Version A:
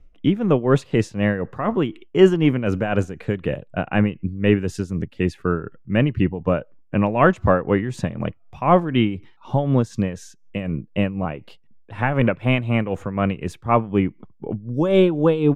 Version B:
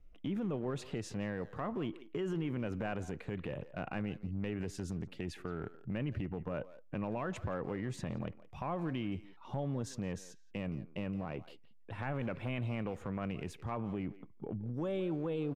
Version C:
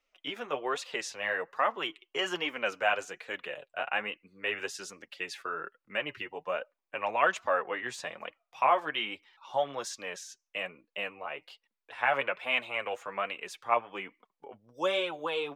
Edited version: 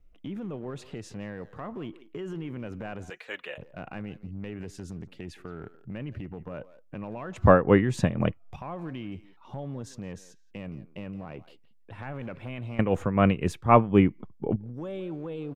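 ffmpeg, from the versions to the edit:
-filter_complex "[0:a]asplit=2[s0][s1];[1:a]asplit=4[s2][s3][s4][s5];[s2]atrim=end=3.102[s6];[2:a]atrim=start=3.098:end=3.582[s7];[s3]atrim=start=3.578:end=7.362[s8];[s0]atrim=start=7.358:end=8.562[s9];[s4]atrim=start=8.558:end=12.792[s10];[s1]atrim=start=12.788:end=14.562[s11];[s5]atrim=start=14.558[s12];[s6][s7]acrossfade=d=0.004:c1=hsin:c2=hsin[s13];[s13][s8]acrossfade=d=0.004:c1=hsin:c2=hsin[s14];[s14][s9]acrossfade=d=0.004:c1=hsin:c2=hsin[s15];[s15][s10]acrossfade=d=0.004:c1=hsin:c2=hsin[s16];[s16][s11]acrossfade=d=0.004:c1=hsin:c2=hsin[s17];[s17][s12]acrossfade=d=0.004:c1=hsin:c2=hsin"

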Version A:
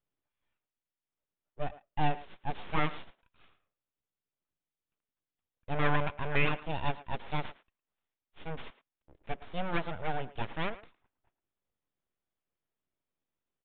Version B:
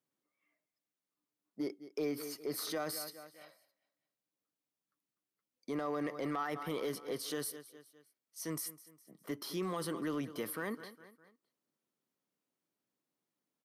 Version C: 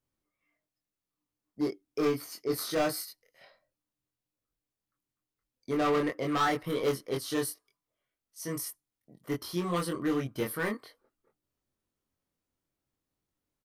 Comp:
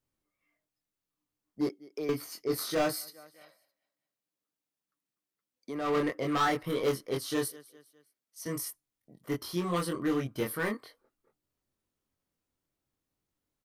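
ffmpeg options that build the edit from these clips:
-filter_complex "[1:a]asplit=3[s0][s1][s2];[2:a]asplit=4[s3][s4][s5][s6];[s3]atrim=end=1.692[s7];[s0]atrim=start=1.688:end=2.092[s8];[s4]atrim=start=2.088:end=3.19[s9];[s1]atrim=start=2.95:end=5.98[s10];[s5]atrim=start=5.74:end=7.482[s11];[s2]atrim=start=7.478:end=8.462[s12];[s6]atrim=start=8.458[s13];[s7][s8]acrossfade=d=0.004:c1=hsin:c2=hsin[s14];[s14][s9]acrossfade=d=0.004:c1=hsin:c2=hsin[s15];[s15][s10]acrossfade=d=0.24:c1=tri:c2=tri[s16];[s16][s11]acrossfade=d=0.24:c1=tri:c2=tri[s17];[s17][s12]acrossfade=d=0.004:c1=hsin:c2=hsin[s18];[s18][s13]acrossfade=d=0.004:c1=hsin:c2=hsin"

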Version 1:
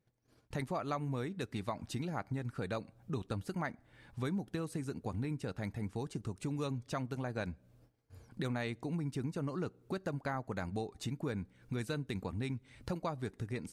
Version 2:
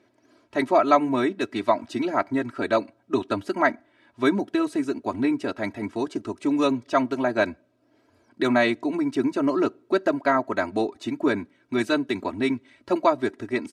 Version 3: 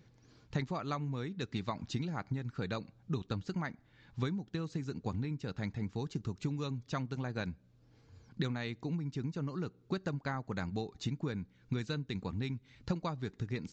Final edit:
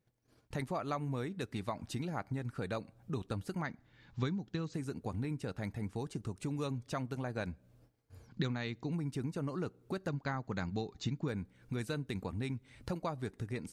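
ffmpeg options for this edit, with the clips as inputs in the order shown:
-filter_complex "[2:a]asplit=3[s0][s1][s2];[0:a]asplit=4[s3][s4][s5][s6];[s3]atrim=end=3.622[s7];[s0]atrim=start=3.618:end=4.742[s8];[s4]atrim=start=4.738:end=8.272[s9];[s1]atrim=start=8.268:end=8.922[s10];[s5]atrim=start=8.918:end=10.082[s11];[s2]atrim=start=10.078:end=11.282[s12];[s6]atrim=start=11.278[s13];[s7][s8]acrossfade=d=0.004:c1=hsin:c2=hsin[s14];[s14][s9]acrossfade=d=0.004:c1=hsin:c2=hsin[s15];[s15][s10]acrossfade=d=0.004:c1=hsin:c2=hsin[s16];[s16][s11]acrossfade=d=0.004:c1=hsin:c2=hsin[s17];[s17][s12]acrossfade=d=0.004:c1=hsin:c2=hsin[s18];[s18][s13]acrossfade=d=0.004:c1=hsin:c2=hsin"

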